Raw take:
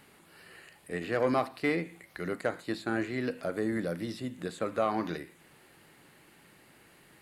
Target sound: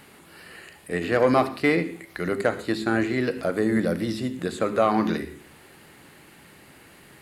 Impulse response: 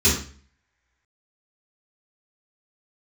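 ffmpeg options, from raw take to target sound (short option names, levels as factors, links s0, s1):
-filter_complex "[0:a]asplit=2[s0][s1];[1:a]atrim=start_sample=2205,adelay=58[s2];[s1][s2]afir=irnorm=-1:irlink=0,volume=0.0251[s3];[s0][s3]amix=inputs=2:normalize=0,volume=2.51"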